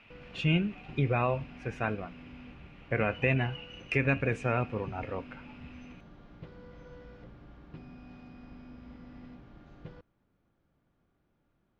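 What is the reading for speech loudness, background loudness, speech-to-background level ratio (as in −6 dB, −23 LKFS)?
−31.0 LKFS, −51.0 LKFS, 20.0 dB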